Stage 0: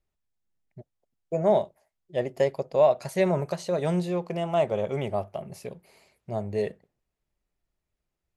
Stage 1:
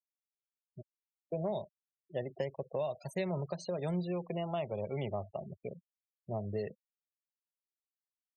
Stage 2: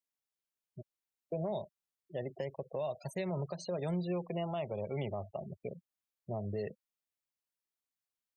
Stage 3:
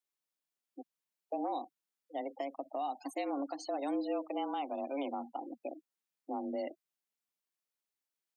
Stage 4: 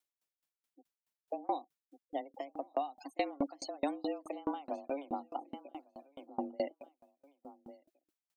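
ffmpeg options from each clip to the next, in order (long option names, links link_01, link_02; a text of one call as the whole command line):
ffmpeg -i in.wav -filter_complex "[0:a]afftfilt=real='re*gte(hypot(re,im),0.0158)':imag='im*gte(hypot(re,im),0.0158)':win_size=1024:overlap=0.75,acrossover=split=140|3000[link_01][link_02][link_03];[link_02]acompressor=threshold=-30dB:ratio=5[link_04];[link_01][link_04][link_03]amix=inputs=3:normalize=0,volume=-4dB" out.wav
ffmpeg -i in.wav -af "alimiter=level_in=4.5dB:limit=-24dB:level=0:latency=1:release=75,volume=-4.5dB,volume=1dB" out.wav
ffmpeg -i in.wav -af "afreqshift=140" out.wav
ffmpeg -i in.wav -af "aecho=1:1:1150|2300:0.158|0.0349,aeval=exprs='val(0)*pow(10,-32*if(lt(mod(4.7*n/s,1),2*abs(4.7)/1000),1-mod(4.7*n/s,1)/(2*abs(4.7)/1000),(mod(4.7*n/s,1)-2*abs(4.7)/1000)/(1-2*abs(4.7)/1000))/20)':channel_layout=same,volume=8dB" out.wav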